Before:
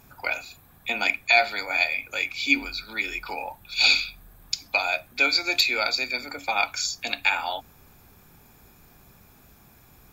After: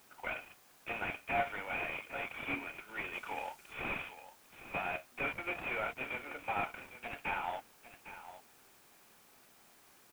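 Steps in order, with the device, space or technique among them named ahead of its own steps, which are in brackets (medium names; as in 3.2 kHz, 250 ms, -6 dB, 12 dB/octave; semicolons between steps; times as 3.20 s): army field radio (band-pass 340–3000 Hz; CVSD coder 16 kbps; white noise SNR 23 dB); 3.13–3.73 s: peaking EQ 7.1 kHz +4.5 dB 1.9 oct; delay 805 ms -13 dB; trim -7.5 dB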